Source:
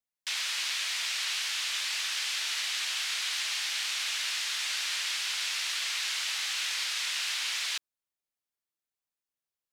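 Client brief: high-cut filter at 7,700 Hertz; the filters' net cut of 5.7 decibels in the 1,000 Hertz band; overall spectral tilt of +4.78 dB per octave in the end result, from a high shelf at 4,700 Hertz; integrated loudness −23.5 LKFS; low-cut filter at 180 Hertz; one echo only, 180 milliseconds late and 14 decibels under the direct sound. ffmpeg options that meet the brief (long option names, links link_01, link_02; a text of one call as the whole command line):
ffmpeg -i in.wav -af "highpass=180,lowpass=7700,equalizer=frequency=1000:width_type=o:gain=-8.5,highshelf=frequency=4700:gain=4,aecho=1:1:180:0.2,volume=5.5dB" out.wav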